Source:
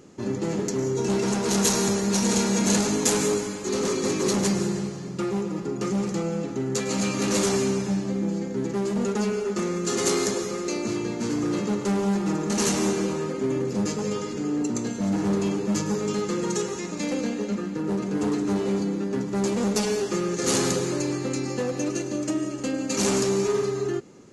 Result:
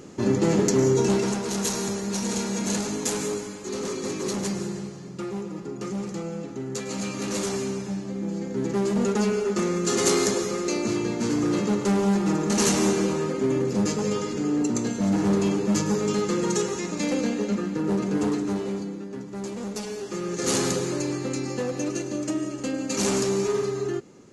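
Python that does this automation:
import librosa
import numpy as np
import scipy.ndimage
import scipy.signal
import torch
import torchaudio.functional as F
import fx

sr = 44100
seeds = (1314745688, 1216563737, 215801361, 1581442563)

y = fx.gain(x, sr, db=fx.line((0.92, 6.0), (1.5, -5.0), (8.11, -5.0), (8.75, 2.0), (18.13, 2.0), (19.07, -8.5), (19.96, -8.5), (20.42, -1.0)))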